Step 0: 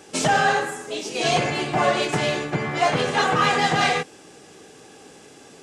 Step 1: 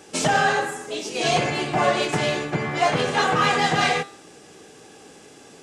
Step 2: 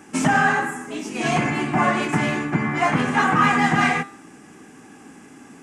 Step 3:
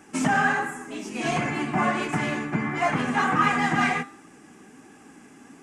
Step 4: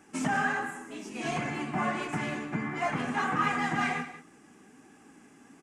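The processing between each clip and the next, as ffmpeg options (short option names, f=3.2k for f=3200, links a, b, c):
-af "bandreject=f=133:t=h:w=4,bandreject=f=266:t=h:w=4,bandreject=f=399:t=h:w=4,bandreject=f=532:t=h:w=4,bandreject=f=665:t=h:w=4,bandreject=f=798:t=h:w=4,bandreject=f=931:t=h:w=4,bandreject=f=1.064k:t=h:w=4,bandreject=f=1.197k:t=h:w=4,bandreject=f=1.33k:t=h:w=4,bandreject=f=1.463k:t=h:w=4,bandreject=f=1.596k:t=h:w=4,bandreject=f=1.729k:t=h:w=4,bandreject=f=1.862k:t=h:w=4,bandreject=f=1.995k:t=h:w=4,bandreject=f=2.128k:t=h:w=4,bandreject=f=2.261k:t=h:w=4,bandreject=f=2.394k:t=h:w=4,bandreject=f=2.527k:t=h:w=4,bandreject=f=2.66k:t=h:w=4,bandreject=f=2.793k:t=h:w=4,bandreject=f=2.926k:t=h:w=4,bandreject=f=3.059k:t=h:w=4,bandreject=f=3.192k:t=h:w=4,bandreject=f=3.325k:t=h:w=4,bandreject=f=3.458k:t=h:w=4,bandreject=f=3.591k:t=h:w=4,bandreject=f=3.724k:t=h:w=4,bandreject=f=3.857k:t=h:w=4,bandreject=f=3.99k:t=h:w=4,bandreject=f=4.123k:t=h:w=4,bandreject=f=4.256k:t=h:w=4,bandreject=f=4.389k:t=h:w=4,bandreject=f=4.522k:t=h:w=4,bandreject=f=4.655k:t=h:w=4"
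-af "equalizer=f=250:t=o:w=1:g=12,equalizer=f=500:t=o:w=1:g=-11,equalizer=f=1k:t=o:w=1:g=5,equalizer=f=2k:t=o:w=1:g=5,equalizer=f=4k:t=o:w=1:g=-12"
-af "flanger=delay=1.3:depth=4.1:regen=67:speed=1.4:shape=triangular"
-af "aecho=1:1:185:0.2,volume=-6.5dB"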